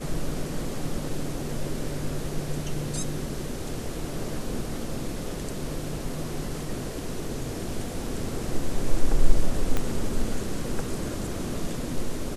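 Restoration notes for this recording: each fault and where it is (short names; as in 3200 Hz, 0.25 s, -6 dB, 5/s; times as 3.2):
9.77 pop -12 dBFS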